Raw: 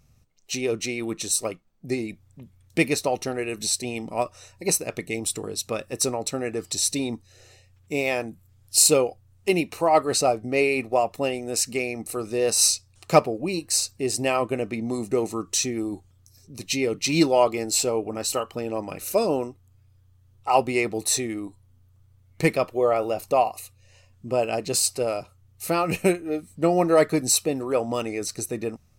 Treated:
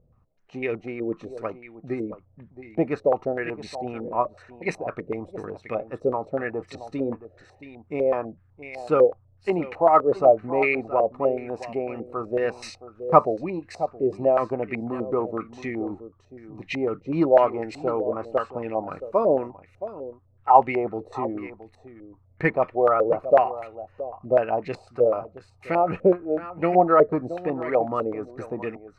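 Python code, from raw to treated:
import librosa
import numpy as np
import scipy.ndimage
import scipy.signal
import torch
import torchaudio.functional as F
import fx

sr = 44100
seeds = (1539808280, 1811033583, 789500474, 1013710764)

p1 = fx.vibrato(x, sr, rate_hz=0.35, depth_cents=16.0)
p2 = p1 + fx.echo_single(p1, sr, ms=671, db=-14.5, dry=0)
p3 = fx.filter_held_lowpass(p2, sr, hz=8.0, low_hz=510.0, high_hz=2000.0)
y = p3 * 10.0 ** (-3.0 / 20.0)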